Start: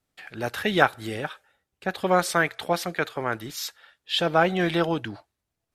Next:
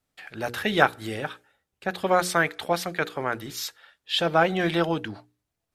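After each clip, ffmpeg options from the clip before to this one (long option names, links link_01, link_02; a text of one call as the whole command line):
ffmpeg -i in.wav -af "bandreject=frequency=60:width_type=h:width=6,bandreject=frequency=120:width_type=h:width=6,bandreject=frequency=180:width_type=h:width=6,bandreject=frequency=240:width_type=h:width=6,bandreject=frequency=300:width_type=h:width=6,bandreject=frequency=360:width_type=h:width=6,bandreject=frequency=420:width_type=h:width=6,bandreject=frequency=480:width_type=h:width=6" out.wav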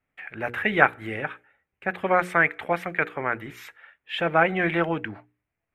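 ffmpeg -i in.wav -af "highshelf=frequency=3200:width_type=q:width=3:gain=-13,volume=-1dB" out.wav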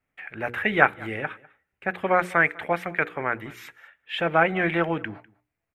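ffmpeg -i in.wav -af "aecho=1:1:200:0.0668" out.wav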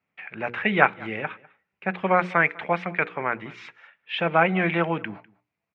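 ffmpeg -i in.wav -af "highpass=120,equalizer=frequency=190:width_type=q:width=4:gain=7,equalizer=frequency=290:width_type=q:width=4:gain=-3,equalizer=frequency=1000:width_type=q:width=4:gain=4,equalizer=frequency=1700:width_type=q:width=4:gain=-3,equalizer=frequency=2500:width_type=q:width=4:gain=4,lowpass=frequency=5300:width=0.5412,lowpass=frequency=5300:width=1.3066" out.wav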